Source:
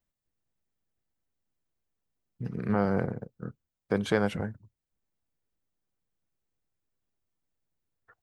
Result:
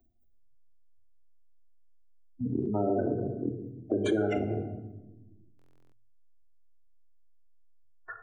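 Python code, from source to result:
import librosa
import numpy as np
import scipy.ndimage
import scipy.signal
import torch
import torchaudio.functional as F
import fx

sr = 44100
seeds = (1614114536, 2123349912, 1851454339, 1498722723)

p1 = fx.peak_eq(x, sr, hz=3800.0, db=-10.0, octaves=1.4)
p2 = fx.spec_gate(p1, sr, threshold_db=-15, keep='strong')
p3 = fx.room_shoebox(p2, sr, seeds[0], volume_m3=2600.0, walls='furnished', distance_m=2.5)
p4 = fx.over_compress(p3, sr, threshold_db=-33.0, ratio=-1.0)
p5 = p3 + (p4 * 10.0 ** (2.0 / 20.0))
p6 = fx.low_shelf(p5, sr, hz=160.0, db=-10.5)
p7 = p6 + 0.79 * np.pad(p6, (int(2.9 * sr / 1000.0), 0))[:len(p6)]
p8 = fx.buffer_glitch(p7, sr, at_s=(5.57,), block=1024, repeats=14)
p9 = fx.band_squash(p8, sr, depth_pct=40)
y = p9 * 10.0 ** (-2.0 / 20.0)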